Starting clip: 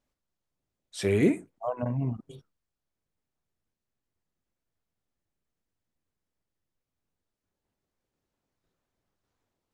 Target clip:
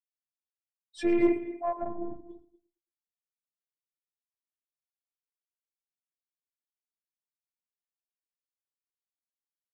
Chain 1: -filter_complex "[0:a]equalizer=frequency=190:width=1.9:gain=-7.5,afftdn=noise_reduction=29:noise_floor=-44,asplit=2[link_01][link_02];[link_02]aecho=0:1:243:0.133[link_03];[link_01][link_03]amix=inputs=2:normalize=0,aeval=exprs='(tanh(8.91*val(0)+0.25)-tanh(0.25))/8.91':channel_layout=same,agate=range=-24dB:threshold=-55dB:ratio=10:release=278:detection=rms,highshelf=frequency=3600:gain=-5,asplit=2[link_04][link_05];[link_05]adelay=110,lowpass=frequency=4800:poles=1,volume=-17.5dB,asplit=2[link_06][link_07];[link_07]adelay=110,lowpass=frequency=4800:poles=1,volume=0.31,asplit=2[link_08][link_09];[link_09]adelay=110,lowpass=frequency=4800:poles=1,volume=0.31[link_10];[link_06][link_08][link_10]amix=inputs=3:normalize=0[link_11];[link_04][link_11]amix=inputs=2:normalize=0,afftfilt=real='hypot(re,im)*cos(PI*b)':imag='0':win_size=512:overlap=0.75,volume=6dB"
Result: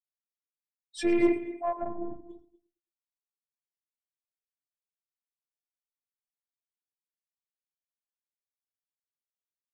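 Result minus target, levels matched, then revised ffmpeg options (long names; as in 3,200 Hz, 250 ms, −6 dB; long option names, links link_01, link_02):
8,000 Hz band +7.5 dB
-filter_complex "[0:a]equalizer=frequency=190:width=1.9:gain=-7.5,afftdn=noise_reduction=29:noise_floor=-44,asplit=2[link_01][link_02];[link_02]aecho=0:1:243:0.133[link_03];[link_01][link_03]amix=inputs=2:normalize=0,aeval=exprs='(tanh(8.91*val(0)+0.25)-tanh(0.25))/8.91':channel_layout=same,agate=range=-24dB:threshold=-55dB:ratio=10:release=278:detection=rms,highshelf=frequency=3600:gain=-14.5,asplit=2[link_04][link_05];[link_05]adelay=110,lowpass=frequency=4800:poles=1,volume=-17.5dB,asplit=2[link_06][link_07];[link_07]adelay=110,lowpass=frequency=4800:poles=1,volume=0.31,asplit=2[link_08][link_09];[link_09]adelay=110,lowpass=frequency=4800:poles=1,volume=0.31[link_10];[link_06][link_08][link_10]amix=inputs=3:normalize=0[link_11];[link_04][link_11]amix=inputs=2:normalize=0,afftfilt=real='hypot(re,im)*cos(PI*b)':imag='0':win_size=512:overlap=0.75,volume=6dB"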